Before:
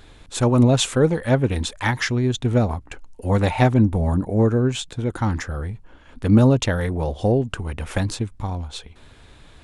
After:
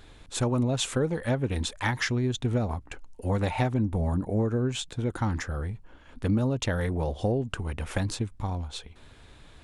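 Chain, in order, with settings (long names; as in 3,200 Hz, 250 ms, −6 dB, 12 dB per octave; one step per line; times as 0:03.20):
downward compressor 6 to 1, threshold −18 dBFS, peak gain reduction 8.5 dB
level −4 dB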